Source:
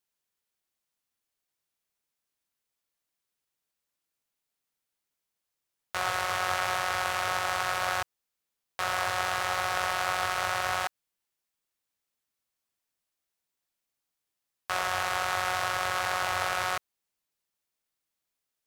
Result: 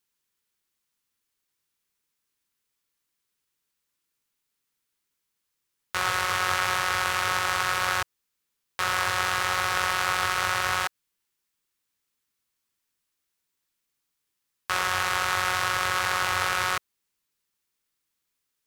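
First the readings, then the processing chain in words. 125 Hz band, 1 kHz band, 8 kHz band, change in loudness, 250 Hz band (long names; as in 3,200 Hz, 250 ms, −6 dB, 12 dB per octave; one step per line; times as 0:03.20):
+5.0 dB, +2.5 dB, +5.0 dB, +4.0 dB, +4.5 dB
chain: parametric band 670 Hz −11.5 dB 0.44 octaves
level +5 dB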